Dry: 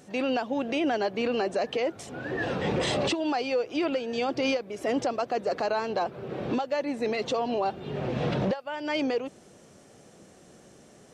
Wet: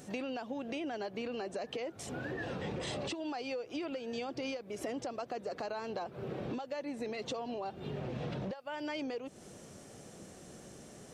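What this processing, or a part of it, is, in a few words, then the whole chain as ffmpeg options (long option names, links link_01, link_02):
ASMR close-microphone chain: -af "lowshelf=frequency=170:gain=5,acompressor=threshold=-37dB:ratio=6,highshelf=frequency=6900:gain=6"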